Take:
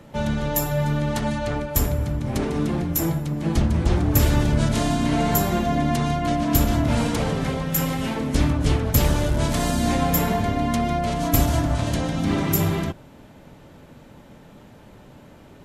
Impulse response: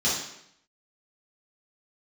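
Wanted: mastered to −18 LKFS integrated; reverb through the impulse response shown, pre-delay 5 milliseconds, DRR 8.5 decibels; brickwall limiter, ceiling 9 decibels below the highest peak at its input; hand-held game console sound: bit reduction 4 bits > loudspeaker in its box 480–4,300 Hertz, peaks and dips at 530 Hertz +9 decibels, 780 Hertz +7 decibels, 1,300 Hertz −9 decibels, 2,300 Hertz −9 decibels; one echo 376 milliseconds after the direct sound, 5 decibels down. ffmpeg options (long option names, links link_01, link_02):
-filter_complex "[0:a]alimiter=limit=-13.5dB:level=0:latency=1,aecho=1:1:376:0.562,asplit=2[link_01][link_02];[1:a]atrim=start_sample=2205,adelay=5[link_03];[link_02][link_03]afir=irnorm=-1:irlink=0,volume=-20.5dB[link_04];[link_01][link_04]amix=inputs=2:normalize=0,acrusher=bits=3:mix=0:aa=0.000001,highpass=480,equalizer=frequency=530:width_type=q:width=4:gain=9,equalizer=frequency=780:width_type=q:width=4:gain=7,equalizer=frequency=1300:width_type=q:width=4:gain=-9,equalizer=frequency=2300:width_type=q:width=4:gain=-9,lowpass=frequency=4300:width=0.5412,lowpass=frequency=4300:width=1.3066,volume=5dB"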